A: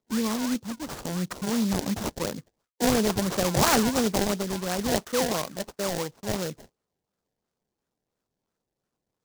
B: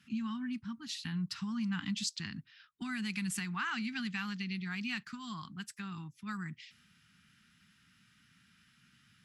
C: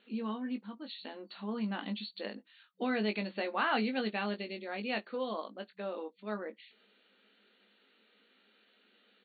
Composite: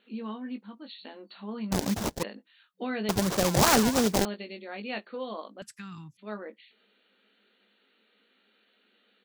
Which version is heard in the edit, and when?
C
1.72–2.23 s: from A
3.09–4.25 s: from A
5.62–6.17 s: from B

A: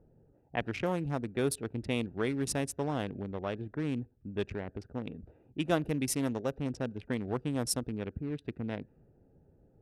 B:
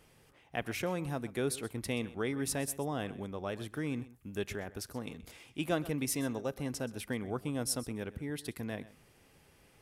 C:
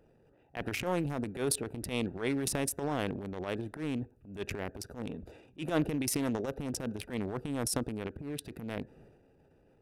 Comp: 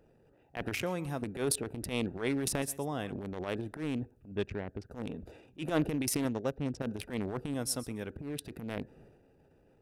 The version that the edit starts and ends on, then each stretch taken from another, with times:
C
0.82–1.22 s: from B
2.62–3.12 s: from B
4.32–4.91 s: from A
6.25–6.82 s: from A
7.54–8.10 s: from B

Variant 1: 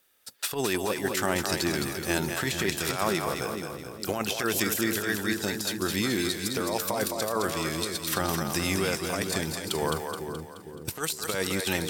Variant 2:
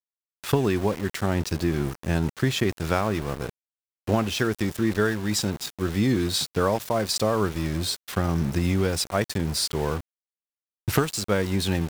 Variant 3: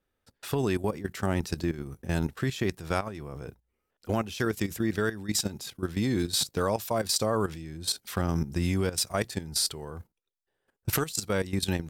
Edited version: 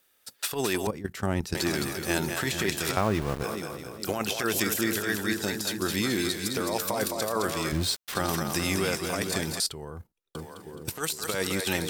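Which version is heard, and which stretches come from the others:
1
0.87–1.55 s: from 3
2.97–3.44 s: from 2
7.72–8.15 s: from 2
9.60–10.35 s: from 3

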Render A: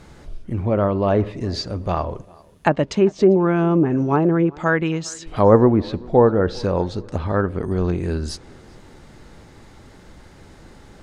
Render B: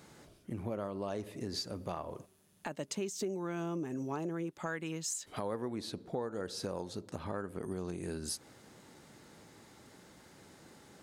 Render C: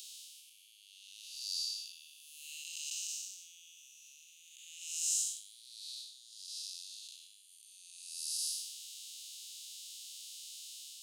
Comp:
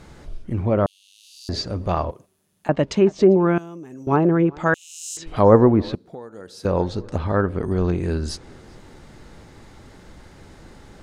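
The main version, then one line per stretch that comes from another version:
A
0.86–1.49 s: from C
2.11–2.69 s: from B
3.58–4.07 s: from B
4.74–5.17 s: from C
5.95–6.65 s: from B

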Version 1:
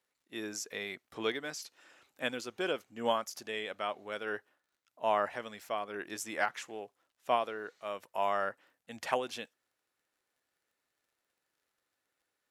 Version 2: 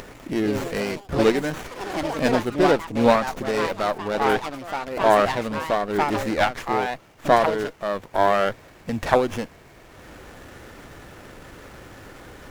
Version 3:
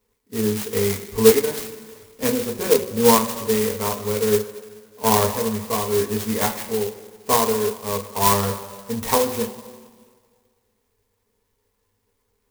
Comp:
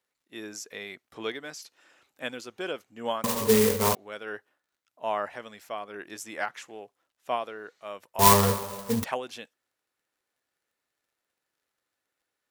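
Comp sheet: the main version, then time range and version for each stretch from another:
1
3.24–3.95 s: from 3
8.19–9.04 s: from 3
not used: 2

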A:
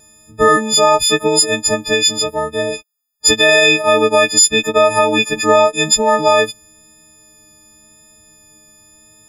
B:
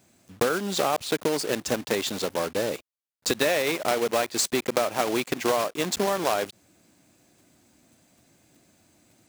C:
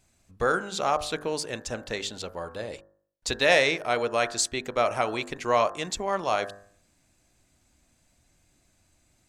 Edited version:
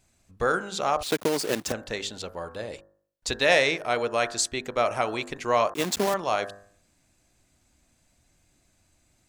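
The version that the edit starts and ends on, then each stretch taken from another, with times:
C
1.03–1.72 s: from B
5.74–6.14 s: from B
not used: A

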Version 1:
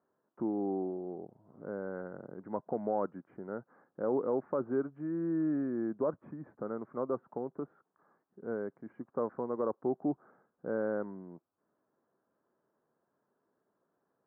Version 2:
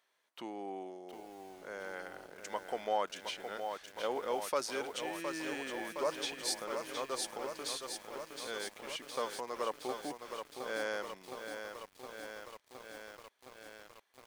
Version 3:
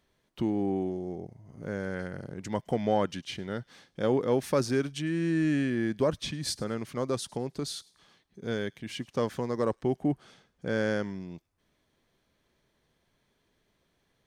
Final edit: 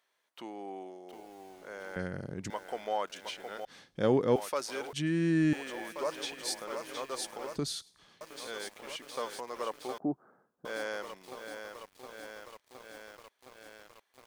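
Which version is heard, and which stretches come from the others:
2
1.96–2.50 s: from 3
3.65–4.36 s: from 3
4.93–5.53 s: from 3
7.56–8.21 s: from 3
9.98–10.65 s: from 1

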